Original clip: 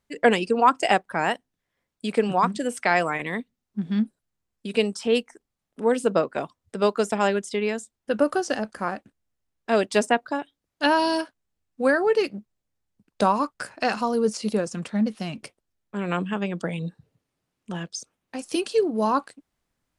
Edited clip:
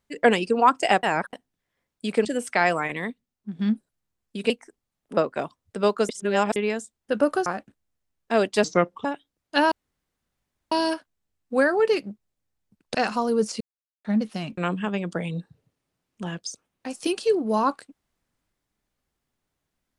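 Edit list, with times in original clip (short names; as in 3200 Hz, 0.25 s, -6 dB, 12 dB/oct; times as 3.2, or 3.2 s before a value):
1.03–1.33 reverse
2.25–2.55 cut
3.2–3.89 fade out, to -7.5 dB
4.8–5.17 cut
5.84–6.16 cut
7.08–7.55 reverse
8.45–8.84 cut
10.02–10.32 speed 74%
10.99 insert room tone 1.00 s
13.22–13.8 cut
14.46–14.9 mute
15.43–16.06 cut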